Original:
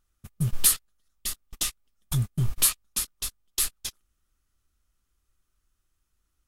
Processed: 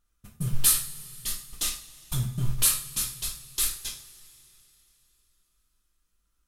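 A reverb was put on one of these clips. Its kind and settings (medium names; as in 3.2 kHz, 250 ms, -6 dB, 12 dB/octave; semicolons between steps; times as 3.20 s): two-slope reverb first 0.4 s, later 3.4 s, from -22 dB, DRR -1 dB; trim -3.5 dB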